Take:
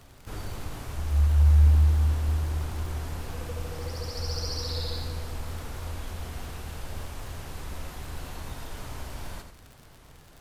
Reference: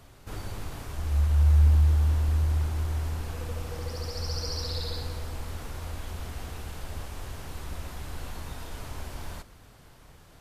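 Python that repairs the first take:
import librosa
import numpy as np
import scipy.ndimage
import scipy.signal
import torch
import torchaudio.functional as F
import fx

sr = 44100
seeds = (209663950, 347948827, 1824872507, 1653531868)

y = fx.fix_declick_ar(x, sr, threshold=6.5)
y = fx.fix_echo_inverse(y, sr, delay_ms=83, level_db=-7.5)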